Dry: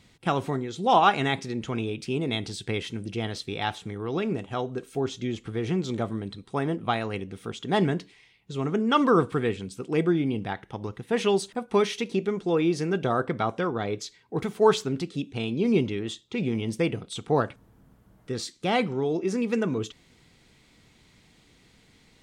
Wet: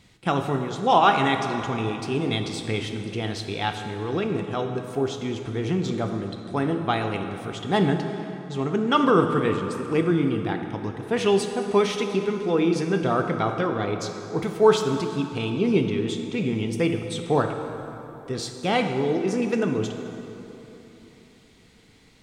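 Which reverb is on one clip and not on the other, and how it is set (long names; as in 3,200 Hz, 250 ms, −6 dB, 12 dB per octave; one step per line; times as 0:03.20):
dense smooth reverb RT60 3.4 s, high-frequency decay 0.6×, pre-delay 0 ms, DRR 5 dB
level +1.5 dB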